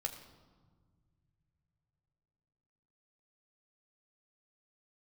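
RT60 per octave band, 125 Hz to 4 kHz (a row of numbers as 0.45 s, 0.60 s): 4.3 s, 3.6 s, 1.8 s, 1.5 s, 1.0 s, 0.95 s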